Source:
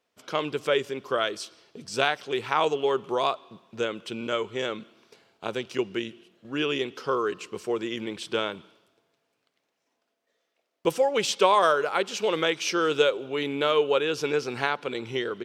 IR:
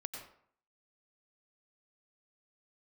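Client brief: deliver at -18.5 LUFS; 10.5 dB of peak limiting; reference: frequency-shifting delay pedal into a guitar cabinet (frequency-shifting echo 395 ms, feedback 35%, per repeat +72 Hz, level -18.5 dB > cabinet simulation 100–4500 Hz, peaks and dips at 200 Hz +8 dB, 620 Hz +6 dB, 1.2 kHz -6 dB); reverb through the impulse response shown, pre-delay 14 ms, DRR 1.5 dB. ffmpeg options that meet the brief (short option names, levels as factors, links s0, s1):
-filter_complex "[0:a]alimiter=limit=0.15:level=0:latency=1,asplit=2[s0][s1];[1:a]atrim=start_sample=2205,adelay=14[s2];[s1][s2]afir=irnorm=-1:irlink=0,volume=1[s3];[s0][s3]amix=inputs=2:normalize=0,asplit=4[s4][s5][s6][s7];[s5]adelay=395,afreqshift=72,volume=0.119[s8];[s6]adelay=790,afreqshift=144,volume=0.0417[s9];[s7]adelay=1185,afreqshift=216,volume=0.0146[s10];[s4][s8][s9][s10]amix=inputs=4:normalize=0,highpass=100,equalizer=f=200:t=q:w=4:g=8,equalizer=f=620:t=q:w=4:g=6,equalizer=f=1200:t=q:w=4:g=-6,lowpass=f=4500:w=0.5412,lowpass=f=4500:w=1.3066,volume=2.37"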